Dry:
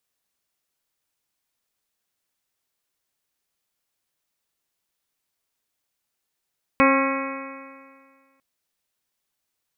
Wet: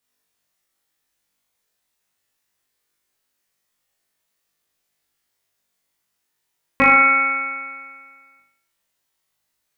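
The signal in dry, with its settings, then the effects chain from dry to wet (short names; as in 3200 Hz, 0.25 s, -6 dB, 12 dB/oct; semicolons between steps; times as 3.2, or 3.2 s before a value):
stretched partials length 1.60 s, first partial 269 Hz, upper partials -1.5/-10.5/-0.5/-6.5/-12/-7.5/-5/-7 dB, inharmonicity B 0.001, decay 1.86 s, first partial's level -17 dB
bell 1900 Hz +3.5 dB 0.27 oct; on a send: flutter echo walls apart 3.4 m, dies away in 0.65 s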